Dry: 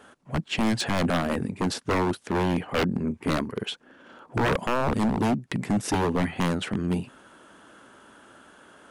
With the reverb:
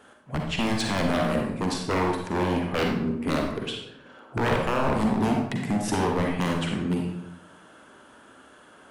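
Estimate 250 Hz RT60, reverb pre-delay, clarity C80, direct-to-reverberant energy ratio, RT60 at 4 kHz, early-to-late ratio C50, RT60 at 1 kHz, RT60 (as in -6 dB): 1.0 s, 39 ms, 6.0 dB, 1.0 dB, 0.55 s, 2.5 dB, 0.80 s, 0.80 s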